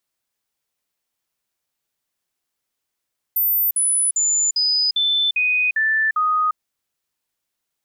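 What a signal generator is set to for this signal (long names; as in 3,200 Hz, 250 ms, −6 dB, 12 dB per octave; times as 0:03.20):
stepped sweep 14,100 Hz down, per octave 2, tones 8, 0.35 s, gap 0.05 s −15.5 dBFS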